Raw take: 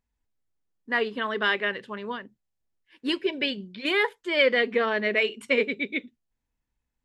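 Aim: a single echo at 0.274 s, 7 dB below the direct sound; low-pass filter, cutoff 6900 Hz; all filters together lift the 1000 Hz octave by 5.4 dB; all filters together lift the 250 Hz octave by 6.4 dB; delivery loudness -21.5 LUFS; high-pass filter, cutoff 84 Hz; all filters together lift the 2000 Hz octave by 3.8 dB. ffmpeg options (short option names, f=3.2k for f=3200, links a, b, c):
-af "highpass=84,lowpass=6.9k,equalizer=f=250:t=o:g=7.5,equalizer=f=1k:t=o:g=5.5,equalizer=f=2k:t=o:g=3,aecho=1:1:274:0.447"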